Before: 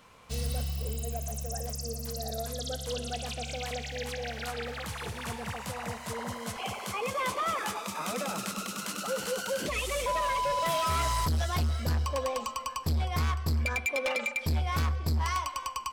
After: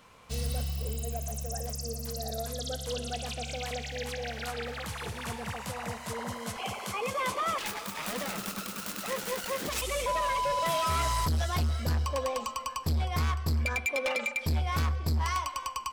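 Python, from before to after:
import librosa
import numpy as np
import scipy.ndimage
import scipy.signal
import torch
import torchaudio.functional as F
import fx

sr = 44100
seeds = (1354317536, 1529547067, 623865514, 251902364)

y = fx.self_delay(x, sr, depth_ms=0.32, at=(7.58, 9.82))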